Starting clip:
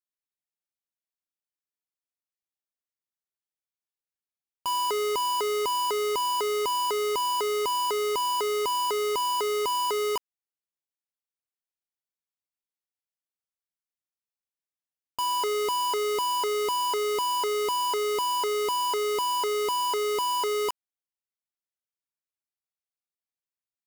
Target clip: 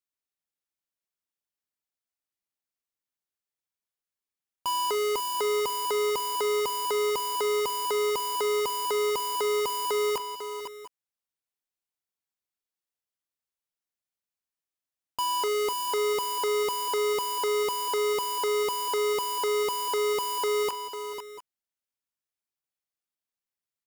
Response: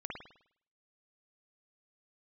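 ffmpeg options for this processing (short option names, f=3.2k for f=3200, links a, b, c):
-af "aecho=1:1:41|497|689|698:0.126|0.335|0.1|0.106"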